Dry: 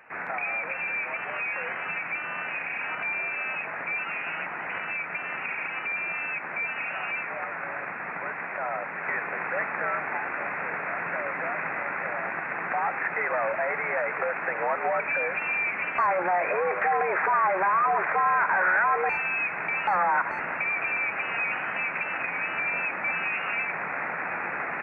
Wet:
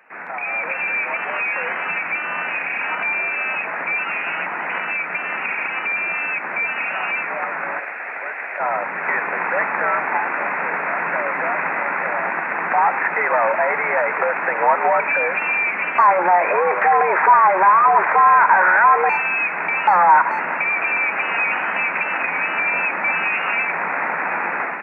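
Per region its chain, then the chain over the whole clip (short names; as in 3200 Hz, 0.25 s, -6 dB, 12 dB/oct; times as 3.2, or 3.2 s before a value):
7.79–8.6 HPF 530 Hz + bell 1100 Hz -7 dB
whole clip: dynamic EQ 940 Hz, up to +8 dB, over -42 dBFS, Q 4.1; steep high-pass 170 Hz 36 dB/oct; AGC gain up to 8 dB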